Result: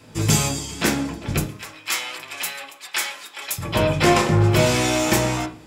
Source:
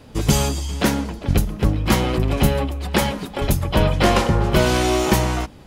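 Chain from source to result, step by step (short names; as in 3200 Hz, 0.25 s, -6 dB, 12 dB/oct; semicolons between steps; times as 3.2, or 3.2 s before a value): 1.46–3.58 Bessel high-pass 1500 Hz, order 2; reverb RT60 0.40 s, pre-delay 3 ms, DRR 2.5 dB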